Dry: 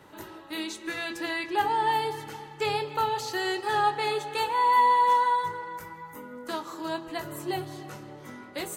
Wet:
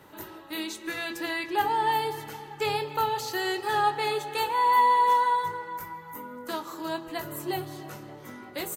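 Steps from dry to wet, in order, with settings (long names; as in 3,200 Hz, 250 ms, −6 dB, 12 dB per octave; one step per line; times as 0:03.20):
parametric band 14,000 Hz +10 dB 0.41 octaves
slap from a distant wall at 160 metres, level −21 dB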